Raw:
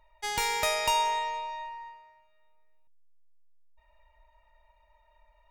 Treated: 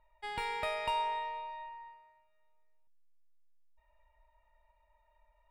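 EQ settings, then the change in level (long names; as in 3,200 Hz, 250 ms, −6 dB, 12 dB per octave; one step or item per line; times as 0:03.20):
moving average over 7 samples
−6.0 dB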